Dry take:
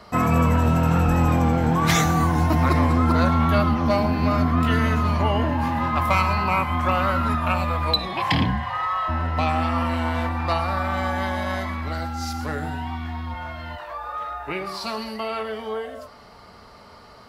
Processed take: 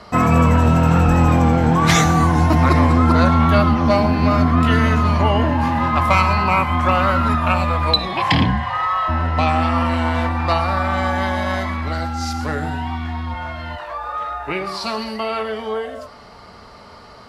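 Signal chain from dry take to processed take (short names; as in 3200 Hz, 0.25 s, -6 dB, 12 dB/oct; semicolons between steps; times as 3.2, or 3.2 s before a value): LPF 10000 Hz 12 dB/oct; gain +5 dB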